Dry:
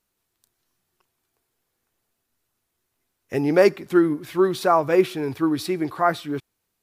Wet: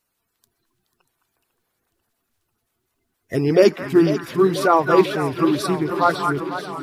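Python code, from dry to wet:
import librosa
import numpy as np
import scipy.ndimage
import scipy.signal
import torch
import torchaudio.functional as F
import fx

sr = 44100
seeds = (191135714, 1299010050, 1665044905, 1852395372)

y = fx.spec_quant(x, sr, step_db=30)
y = fx.echo_stepped(y, sr, ms=212, hz=1300.0, octaves=1.4, feedback_pct=70, wet_db=-3.0)
y = fx.echo_warbled(y, sr, ms=494, feedback_pct=72, rate_hz=2.8, cents=111, wet_db=-12)
y = y * 10.0 ** (3.0 / 20.0)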